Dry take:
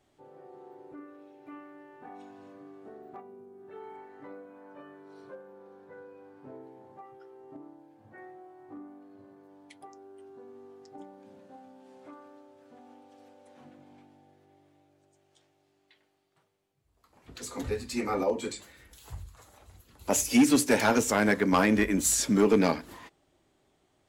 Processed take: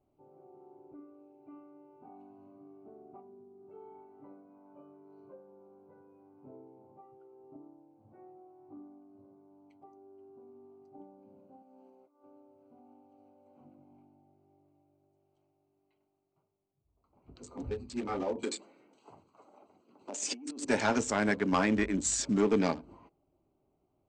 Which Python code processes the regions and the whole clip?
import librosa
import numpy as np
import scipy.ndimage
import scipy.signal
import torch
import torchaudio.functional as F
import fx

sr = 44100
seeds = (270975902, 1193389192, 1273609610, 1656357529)

y = fx.chain(x, sr, fx.crossing_spikes(level_db=-55.0),
    fx.highpass(hz=260.0, slope=12),
    fx.over_compress(threshold_db=-55.0, ratio=-0.5), at=(11.62, 12.24))
y = fx.chain(y, sr, fx.over_compress(threshold_db=-33.0, ratio=-1.0),
    fx.highpass(hz=230.0, slope=24), at=(18.43, 20.65))
y = fx.wiener(y, sr, points=25)
y = scipy.signal.sosfilt(scipy.signal.butter(16, 8700.0, 'lowpass', fs=sr, output='sos'), y)
y = fx.notch(y, sr, hz=490.0, q=12.0)
y = F.gain(torch.from_numpy(y), -4.0).numpy()